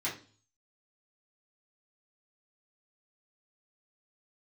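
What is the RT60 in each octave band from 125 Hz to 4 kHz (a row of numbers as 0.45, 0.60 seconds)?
0.70, 0.50, 0.45, 0.35, 0.35, 0.45 seconds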